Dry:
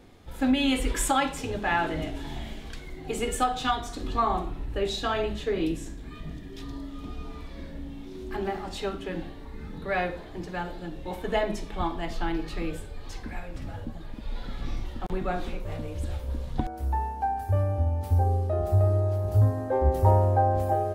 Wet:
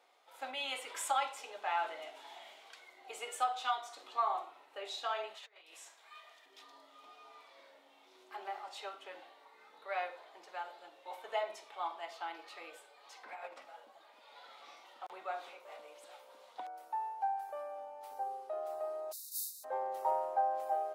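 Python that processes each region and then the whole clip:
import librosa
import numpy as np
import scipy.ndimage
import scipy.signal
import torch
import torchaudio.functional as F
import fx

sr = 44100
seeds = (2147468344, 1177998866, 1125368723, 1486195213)

y = fx.chain(x, sr, fx.highpass(hz=740.0, slope=12),
    fx.over_compress(threshold_db=-43.0, ratio=-0.5), at=(5.34, 6.46))
y = fx.chain(y, sr, fx.high_shelf(hz=3300.0, db=-9.5),
    fx.env_flatten(amount_pct=100), at=(13.23, 13.65))
y = fx.spec_flatten(y, sr, power=0.49, at=(19.11, 19.63), fade=0.02)
y = fx.brickwall_bandstop(y, sr, low_hz=210.0, high_hz=3600.0, at=(19.11, 19.63), fade=0.02)
y = fx.pre_emphasis(y, sr, coefficient=0.8, at=(19.11, 19.63), fade=0.02)
y = scipy.signal.sosfilt(scipy.signal.butter(4, 660.0, 'highpass', fs=sr, output='sos'), y)
y = fx.tilt_eq(y, sr, slope=-1.5)
y = fx.notch(y, sr, hz=1700.0, q=9.7)
y = y * 10.0 ** (-6.5 / 20.0)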